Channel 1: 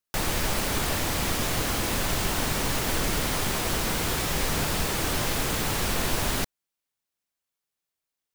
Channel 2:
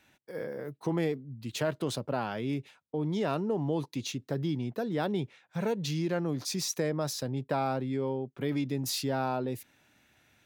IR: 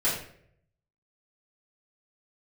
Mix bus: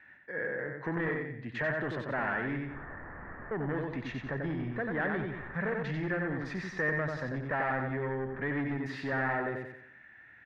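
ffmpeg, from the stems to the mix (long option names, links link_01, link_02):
-filter_complex "[0:a]lowpass=frequency=1400:width=0.5412,lowpass=frequency=1400:width=1.3066,adelay=2000,volume=-18dB[link_01];[1:a]volume=-1.5dB,asplit=3[link_02][link_03][link_04];[link_02]atrim=end=2.65,asetpts=PTS-STARTPTS,afade=type=out:start_time=2.646:duration=0.004:curve=hsin[link_05];[link_03]atrim=start=2.65:end=3.51,asetpts=PTS-STARTPTS,volume=0[link_06];[link_04]atrim=start=3.51,asetpts=PTS-STARTPTS,afade=type=in:duration=0.004:curve=hsin[link_07];[link_05][link_06][link_07]concat=n=3:v=0:a=1,asplit=3[link_08][link_09][link_10];[link_09]volume=-4.5dB[link_11];[link_10]apad=whole_len=456211[link_12];[link_01][link_12]sidechaincompress=threshold=-42dB:ratio=8:attack=16:release=204[link_13];[link_11]aecho=0:1:91|182|273|364|455:1|0.39|0.152|0.0593|0.0231[link_14];[link_13][link_08][link_14]amix=inputs=3:normalize=0,asoftclip=type=tanh:threshold=-29dB,lowpass=frequency=1800:width_type=q:width=11"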